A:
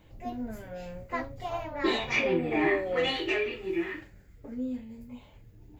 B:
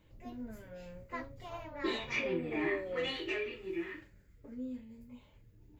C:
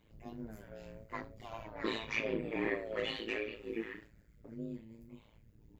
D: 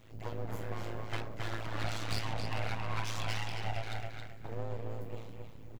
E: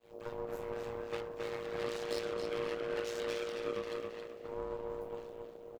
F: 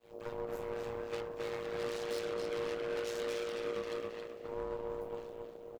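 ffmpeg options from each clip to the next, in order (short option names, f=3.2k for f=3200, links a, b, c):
-af "equalizer=f=750:t=o:w=0.21:g=-10.5,volume=-7.5dB"
-af "tremolo=f=110:d=0.947,volume=2.5dB"
-filter_complex "[0:a]acompressor=threshold=-43dB:ratio=6,aeval=exprs='abs(val(0))':c=same,asplit=2[a][b];[b]adelay=271,lowpass=f=4.9k:p=1,volume=-4dB,asplit=2[c][d];[d]adelay=271,lowpass=f=4.9k:p=1,volume=0.26,asplit=2[e][f];[f]adelay=271,lowpass=f=4.9k:p=1,volume=0.26,asplit=2[g][h];[h]adelay=271,lowpass=f=4.9k:p=1,volume=0.26[i];[a][c][e][g][i]amix=inputs=5:normalize=0,volume=11dB"
-filter_complex "[0:a]asplit=6[a][b][c][d][e][f];[b]adelay=268,afreqshift=63,volume=-17dB[g];[c]adelay=536,afreqshift=126,volume=-22.7dB[h];[d]adelay=804,afreqshift=189,volume=-28.4dB[i];[e]adelay=1072,afreqshift=252,volume=-34dB[j];[f]adelay=1340,afreqshift=315,volume=-39.7dB[k];[a][g][h][i][j][k]amix=inputs=6:normalize=0,aeval=exprs='val(0)*sin(2*PI*470*n/s)':c=same,agate=range=-33dB:threshold=-58dB:ratio=3:detection=peak,volume=-2dB"
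-af "asoftclip=type=hard:threshold=-31dB,volume=1dB"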